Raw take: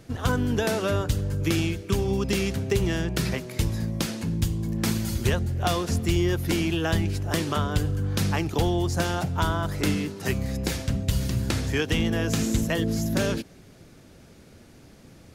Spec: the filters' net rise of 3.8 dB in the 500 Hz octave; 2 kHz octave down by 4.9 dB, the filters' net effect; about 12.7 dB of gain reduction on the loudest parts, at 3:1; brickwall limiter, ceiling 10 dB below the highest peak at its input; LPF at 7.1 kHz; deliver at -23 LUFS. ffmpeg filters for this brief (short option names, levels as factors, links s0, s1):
-af "lowpass=7100,equalizer=f=500:t=o:g=5.5,equalizer=f=2000:t=o:g=-7,acompressor=threshold=0.0158:ratio=3,volume=7.5,alimiter=limit=0.2:level=0:latency=1"